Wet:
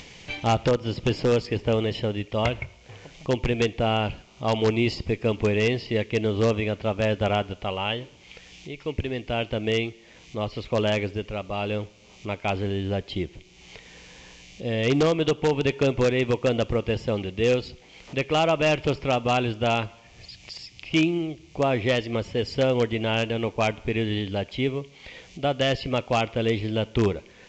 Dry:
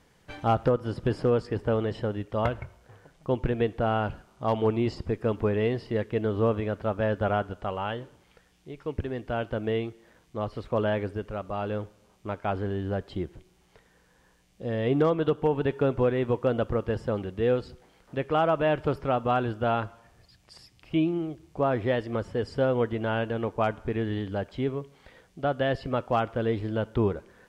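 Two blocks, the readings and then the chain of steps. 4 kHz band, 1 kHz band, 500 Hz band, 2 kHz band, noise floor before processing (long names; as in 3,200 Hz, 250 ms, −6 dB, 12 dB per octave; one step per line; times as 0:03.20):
+12.5 dB, +1.0 dB, +2.5 dB, +6.5 dB, −63 dBFS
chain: high shelf with overshoot 1,900 Hz +6.5 dB, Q 3
in parallel at −7.5 dB: wrap-around overflow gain 16 dB
on the sum: upward compression, threshold −35 dBFS
A-law companding 128 kbit/s 16,000 Hz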